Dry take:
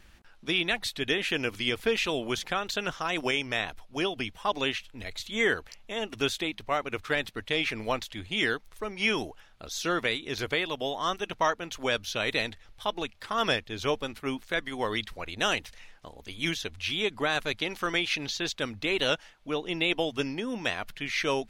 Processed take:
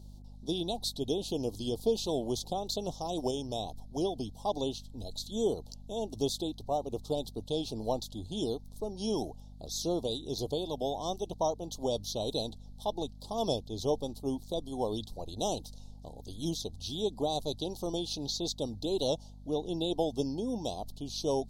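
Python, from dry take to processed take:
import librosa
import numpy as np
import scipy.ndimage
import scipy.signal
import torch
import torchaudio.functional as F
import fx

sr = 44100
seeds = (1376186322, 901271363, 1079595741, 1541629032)

y = scipy.signal.sosfilt(scipy.signal.ellip(3, 1.0, 60, [820.0, 4000.0], 'bandstop', fs=sr, output='sos'), x)
y = fx.add_hum(y, sr, base_hz=50, snr_db=15)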